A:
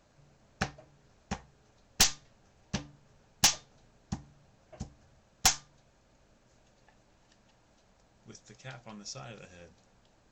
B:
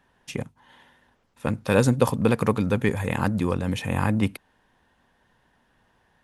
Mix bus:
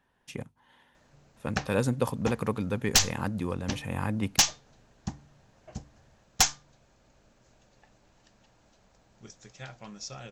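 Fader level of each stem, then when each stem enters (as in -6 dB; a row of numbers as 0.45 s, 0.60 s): +2.0 dB, -7.5 dB; 0.95 s, 0.00 s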